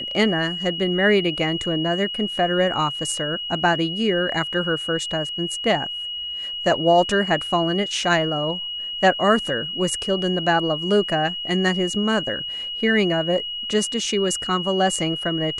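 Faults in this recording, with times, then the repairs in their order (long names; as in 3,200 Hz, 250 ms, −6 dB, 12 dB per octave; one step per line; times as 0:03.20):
whistle 2,900 Hz −27 dBFS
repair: notch filter 2,900 Hz, Q 30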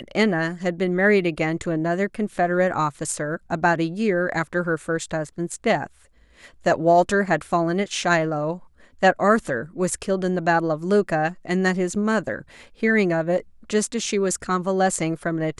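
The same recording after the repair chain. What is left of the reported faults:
none of them is left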